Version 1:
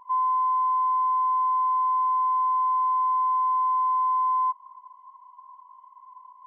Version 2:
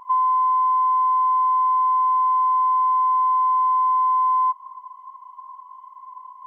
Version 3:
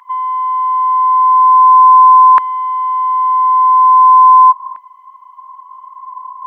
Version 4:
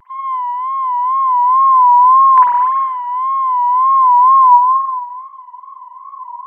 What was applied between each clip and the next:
band-stop 960 Hz, Q 16; compression, threshold -26 dBFS, peak gain reduction 3.5 dB; trim +9 dB
LFO high-pass saw down 0.42 Hz 880–1800 Hz; trim +6.5 dB
reverberation RT60 1.6 s, pre-delay 44 ms, DRR -7.5 dB; wow and flutter 88 cents; trim -8.5 dB

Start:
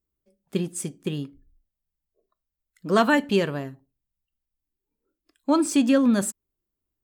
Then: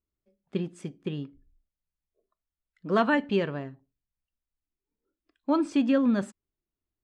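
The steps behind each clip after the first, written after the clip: low-pass 3.2 kHz 12 dB/octave; trim -4 dB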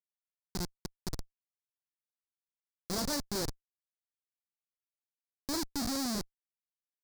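Schmitt trigger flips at -26.5 dBFS; resonant high shelf 3.7 kHz +8 dB, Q 3; trim -3.5 dB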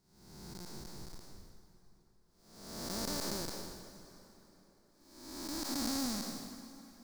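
spectral blur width 534 ms; plate-style reverb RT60 4.2 s, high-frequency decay 0.75×, DRR 9 dB; trim +3 dB

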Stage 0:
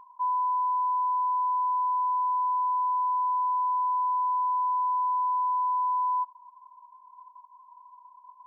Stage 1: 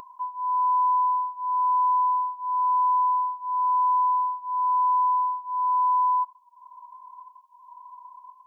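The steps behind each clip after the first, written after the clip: upward compressor, threshold -45 dBFS; Shepard-style phaser rising 0.98 Hz; trim +6.5 dB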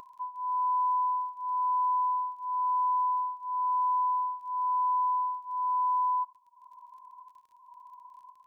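crackle 30 per s -48 dBFS; trim -5.5 dB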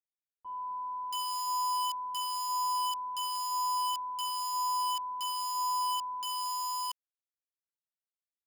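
bit crusher 5-bit; bands offset in time lows, highs 680 ms, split 950 Hz; trim -4.5 dB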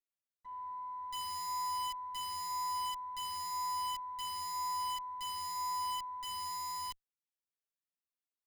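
comb filter that takes the minimum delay 7 ms; trim -5.5 dB

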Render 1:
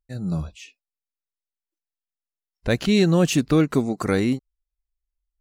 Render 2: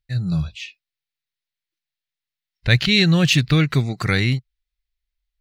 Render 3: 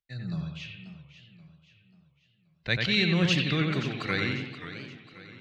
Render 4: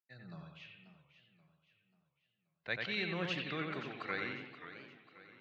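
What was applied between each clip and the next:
ten-band graphic EQ 125 Hz +12 dB, 250 Hz -8 dB, 500 Hz -5 dB, 1 kHz -4 dB, 2 kHz +9 dB, 4 kHz +10 dB, 8 kHz -5 dB; trim +1 dB
three-band isolator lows -13 dB, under 160 Hz, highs -17 dB, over 6.2 kHz; bucket-brigade echo 90 ms, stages 2048, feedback 47%, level -4 dB; modulated delay 534 ms, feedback 44%, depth 195 cents, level -13 dB; trim -8.5 dB
band-pass filter 940 Hz, Q 0.7; trim -5.5 dB

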